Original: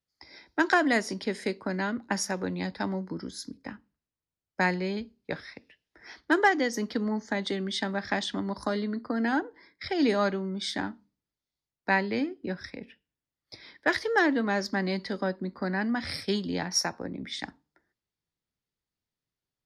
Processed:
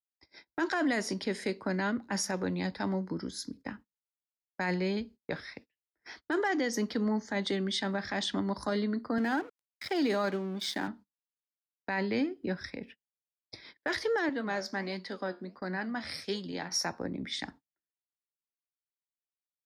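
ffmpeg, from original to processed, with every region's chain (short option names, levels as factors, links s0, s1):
-filter_complex "[0:a]asettb=1/sr,asplit=3[s0][s1][s2];[s0]atrim=end=9.184[s3];[s1]atrim=start=9.18:end=10.88,asetpts=PTS-STARTPTS,afade=t=in:d=0.004:c=qsin,afade=t=out:st=1.696:d=0.004:c=qsin,aeval=exprs='sgn(val(0))*max(abs(val(0))-0.00501,0)':c=same,highpass=160,acompressor=mode=upward:threshold=0.0141:ratio=2.5:attack=3.2:release=140:knee=2.83:detection=peak[s4];[s2]atrim=start=10.876[s5];[s3][s4]acrossfade=d=0.004:c1=hsin:c2=qsin[s6];[s6][s5]acrossfade=d=0.004:c1=qsin:c2=hsin,asettb=1/sr,asplit=3[s7][s8][s9];[s7]atrim=end=14.294[s10];[s8]atrim=start=14.29:end=16.72,asetpts=PTS-STARTPTS,afade=t=in:d=0.004:c=qsin,afade=t=out:st=2.426:d=0.004:c=qsin,lowshelf=f=170:g=-10,flanger=delay=5.4:depth=8.7:regen=75:speed=1.4:shape=sinusoidal[s11];[s9]atrim=start=16.716[s12];[s10][s11]acrossfade=d=0.004:c1=hsin:c2=qsin[s13];[s13][s12]acrossfade=d=0.004:c1=qsin:c2=hsin,agate=range=0.0355:threshold=0.00355:ratio=16:detection=peak,alimiter=limit=0.0794:level=0:latency=1:release=18"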